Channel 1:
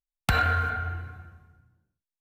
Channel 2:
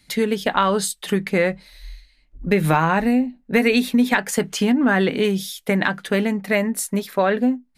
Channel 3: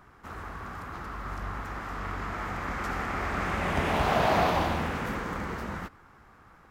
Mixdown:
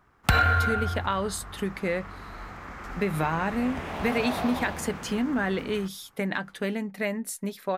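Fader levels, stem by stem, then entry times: +2.5 dB, -9.5 dB, -7.5 dB; 0.00 s, 0.50 s, 0.00 s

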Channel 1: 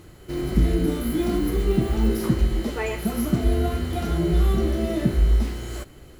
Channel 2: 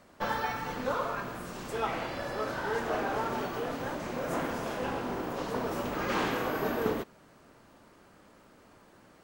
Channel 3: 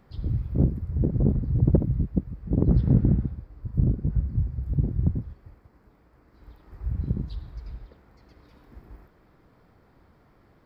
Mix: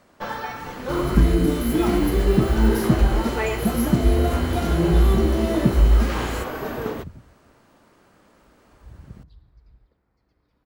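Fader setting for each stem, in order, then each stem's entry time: +3.0 dB, +1.5 dB, -15.0 dB; 0.60 s, 0.00 s, 2.00 s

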